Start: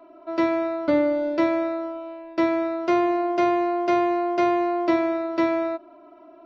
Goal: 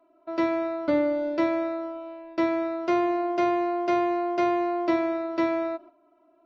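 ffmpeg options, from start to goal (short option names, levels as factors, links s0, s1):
-af "agate=range=0.282:threshold=0.00794:ratio=16:detection=peak,volume=0.708"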